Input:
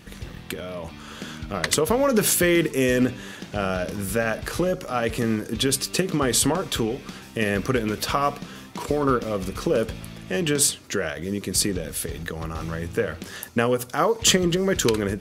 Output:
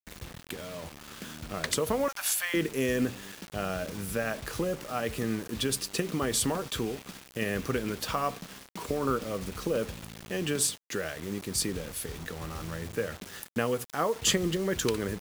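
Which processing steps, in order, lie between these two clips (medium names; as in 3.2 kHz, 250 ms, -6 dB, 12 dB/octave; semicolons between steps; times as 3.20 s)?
2.08–2.54 s: steep high-pass 640 Hz 72 dB/octave; bit crusher 6-bit; trim -7.5 dB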